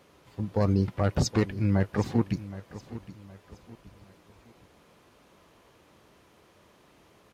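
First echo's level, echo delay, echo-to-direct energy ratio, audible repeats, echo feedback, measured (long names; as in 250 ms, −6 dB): −16.0 dB, 768 ms, −15.5 dB, 3, 36%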